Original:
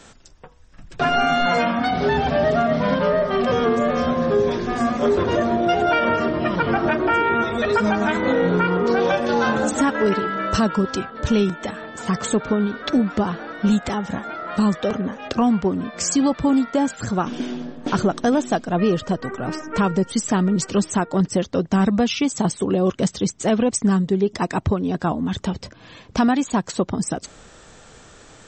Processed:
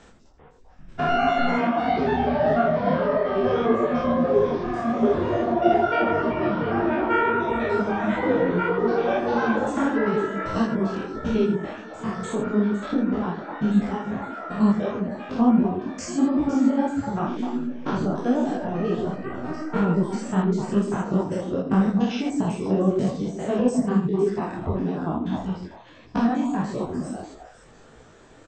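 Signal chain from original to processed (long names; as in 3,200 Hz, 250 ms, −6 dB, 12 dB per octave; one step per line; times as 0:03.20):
spectrum averaged block by block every 100 ms
high-shelf EQ 2,900 Hz −10 dB
echo through a band-pass that steps 127 ms, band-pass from 300 Hz, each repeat 1.4 octaves, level −1.5 dB
reverb reduction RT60 0.66 s
single-tap delay 82 ms −9.5 dB
micro pitch shift up and down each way 55 cents
level +3 dB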